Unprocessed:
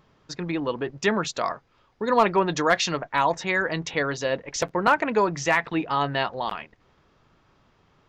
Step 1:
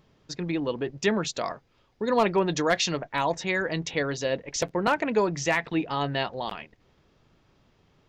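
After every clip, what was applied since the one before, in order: peaking EQ 1.2 kHz -7 dB 1.3 oct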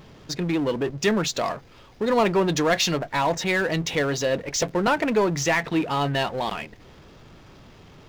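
power-law waveshaper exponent 0.7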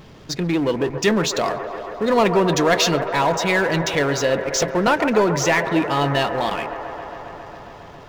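feedback echo behind a band-pass 136 ms, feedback 84%, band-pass 850 Hz, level -9 dB; trim +3.5 dB

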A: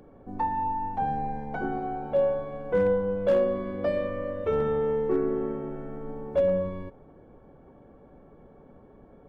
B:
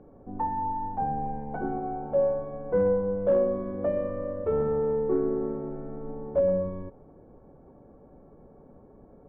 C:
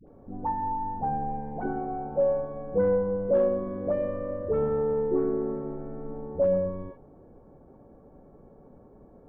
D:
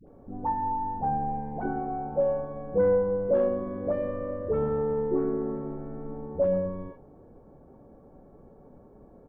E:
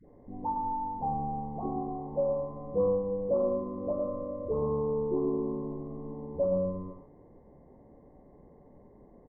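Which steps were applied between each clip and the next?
low-pass 1.1 kHz 12 dB/octave
phase dispersion highs, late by 78 ms, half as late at 620 Hz
doubling 28 ms -12.5 dB
knee-point frequency compression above 1 kHz 4:1; delay 108 ms -7.5 dB; trim -4 dB

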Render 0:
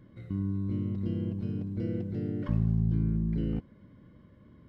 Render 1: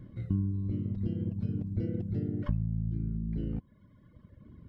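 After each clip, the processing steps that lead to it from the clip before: bass shelf 220 Hz +11 dB; compression 6:1, threshold -24 dBFS, peak gain reduction 10 dB; reverb removal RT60 1.7 s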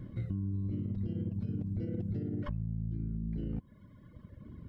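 peak limiter -26.5 dBFS, peak gain reduction 9.5 dB; compression, threshold -35 dBFS, peak gain reduction 6 dB; trim +3.5 dB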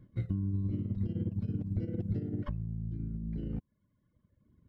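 upward expansion 2.5:1, over -48 dBFS; trim +4.5 dB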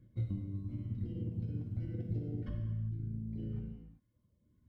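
LFO notch sine 1 Hz 400–1800 Hz; gated-style reverb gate 420 ms falling, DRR 0 dB; trim -6 dB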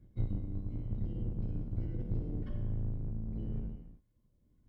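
octave divider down 2 oct, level +3 dB; trim -1.5 dB

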